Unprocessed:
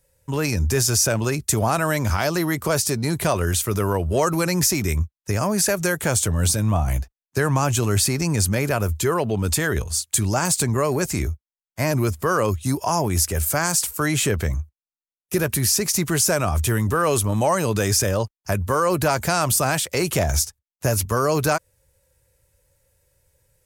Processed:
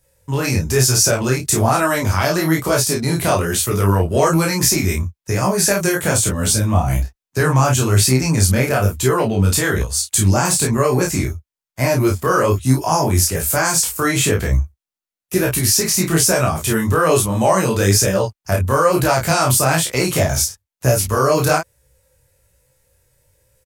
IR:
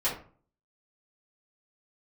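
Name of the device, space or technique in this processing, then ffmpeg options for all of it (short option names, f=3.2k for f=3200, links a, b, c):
double-tracked vocal: -filter_complex "[0:a]asplit=2[a][b];[b]adelay=31,volume=-3dB[c];[a][c]amix=inputs=2:normalize=0,flanger=delay=15.5:depth=7.4:speed=1.1,volume=6dB"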